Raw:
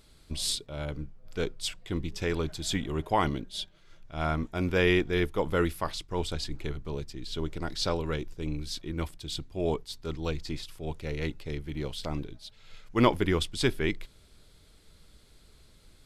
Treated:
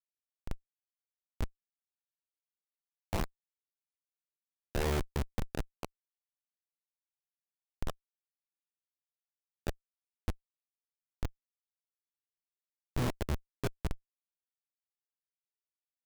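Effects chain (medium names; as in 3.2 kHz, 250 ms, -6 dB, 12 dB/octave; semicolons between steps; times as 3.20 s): short-time spectra conjugated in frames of 49 ms; Schmitt trigger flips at -22.5 dBFS; trim +5 dB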